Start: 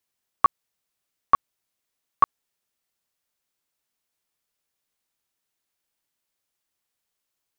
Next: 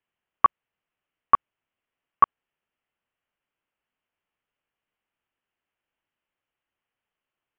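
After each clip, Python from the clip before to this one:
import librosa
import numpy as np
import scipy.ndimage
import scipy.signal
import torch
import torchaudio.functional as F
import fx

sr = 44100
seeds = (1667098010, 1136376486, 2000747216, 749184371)

y = scipy.signal.sosfilt(scipy.signal.ellip(4, 1.0, 40, 3000.0, 'lowpass', fs=sr, output='sos'), x)
y = y * 10.0 ** (1.5 / 20.0)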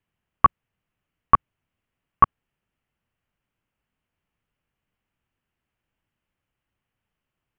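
y = fx.bass_treble(x, sr, bass_db=14, treble_db=-2)
y = y * 10.0 ** (2.0 / 20.0)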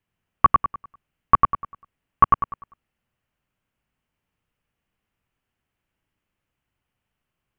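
y = fx.echo_feedback(x, sr, ms=99, feedback_pct=35, wet_db=-3.5)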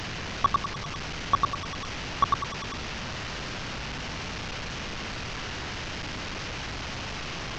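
y = fx.delta_mod(x, sr, bps=32000, step_db=-20.5)
y = y * 10.0 ** (-8.0 / 20.0)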